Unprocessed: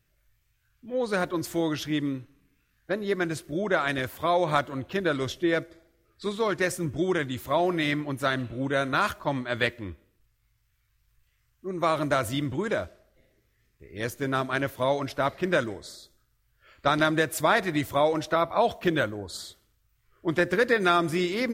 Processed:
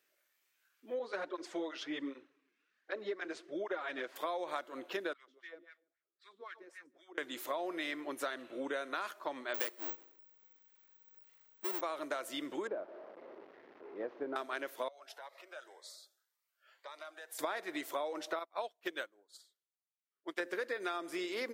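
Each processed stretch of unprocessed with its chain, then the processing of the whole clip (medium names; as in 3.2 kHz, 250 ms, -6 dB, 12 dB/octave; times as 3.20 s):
0.99–4.16 s: distance through air 120 m + cancelling through-zero flanger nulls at 1.3 Hz, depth 7.3 ms
5.13–7.18 s: amplifier tone stack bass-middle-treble 5-5-5 + feedback delay 147 ms, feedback 16%, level -11 dB + LFO band-pass sine 3.8 Hz 240–2000 Hz
9.54–11.81 s: square wave that keeps the level + careless resampling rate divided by 2×, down filtered, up zero stuff
12.67–14.36 s: one-bit delta coder 32 kbps, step -38 dBFS + Bessel low-pass 720 Hz
14.88–17.39 s: compression 5:1, threshold -34 dBFS + ladder high-pass 540 Hz, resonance 30% + Shepard-style phaser rising 1.9 Hz
18.39–20.40 s: tilt shelf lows -3.5 dB, about 1.4 kHz + upward expansion 2.5:1, over -41 dBFS
whole clip: high-pass 330 Hz 24 dB/octave; compression 6:1, threshold -34 dBFS; trim -1.5 dB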